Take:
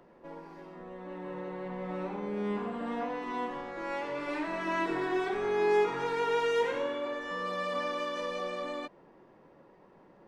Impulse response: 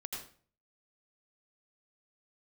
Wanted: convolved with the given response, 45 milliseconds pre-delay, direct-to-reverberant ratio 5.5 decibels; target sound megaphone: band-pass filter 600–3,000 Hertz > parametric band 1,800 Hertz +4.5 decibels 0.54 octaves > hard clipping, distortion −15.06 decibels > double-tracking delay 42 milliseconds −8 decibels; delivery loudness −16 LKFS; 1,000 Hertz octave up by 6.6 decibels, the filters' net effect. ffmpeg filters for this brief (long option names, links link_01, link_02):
-filter_complex "[0:a]equalizer=frequency=1000:width_type=o:gain=8,asplit=2[link_01][link_02];[1:a]atrim=start_sample=2205,adelay=45[link_03];[link_02][link_03]afir=irnorm=-1:irlink=0,volume=-5dB[link_04];[link_01][link_04]amix=inputs=2:normalize=0,highpass=600,lowpass=3000,equalizer=frequency=1800:width_type=o:width=0.54:gain=4.5,asoftclip=type=hard:threshold=-24.5dB,asplit=2[link_05][link_06];[link_06]adelay=42,volume=-8dB[link_07];[link_05][link_07]amix=inputs=2:normalize=0,volume=15dB"